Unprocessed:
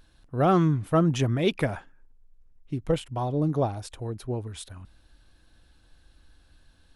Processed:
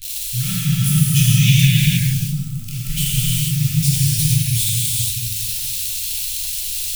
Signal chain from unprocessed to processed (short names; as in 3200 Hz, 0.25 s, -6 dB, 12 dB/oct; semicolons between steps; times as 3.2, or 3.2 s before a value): switching spikes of -26 dBFS; delay with a stepping band-pass 0.472 s, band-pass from 190 Hz, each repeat 0.7 oct, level 0 dB; non-linear reverb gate 0.5 s flat, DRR -7.5 dB; dynamic EQ 100 Hz, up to -6 dB, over -33 dBFS, Q 2; elliptic band-stop 130–2500 Hz, stop band 50 dB; gain +8.5 dB